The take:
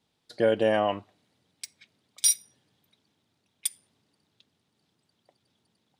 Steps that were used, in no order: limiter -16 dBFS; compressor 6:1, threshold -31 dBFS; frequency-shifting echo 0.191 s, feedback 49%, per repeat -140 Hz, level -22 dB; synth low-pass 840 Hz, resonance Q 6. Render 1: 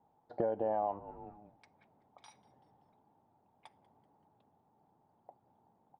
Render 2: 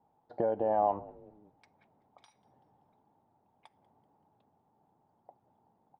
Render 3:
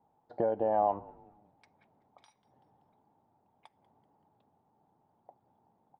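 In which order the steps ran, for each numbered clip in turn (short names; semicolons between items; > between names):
limiter > frequency-shifting echo > synth low-pass > compressor; limiter > compressor > synth low-pass > frequency-shifting echo; compressor > frequency-shifting echo > limiter > synth low-pass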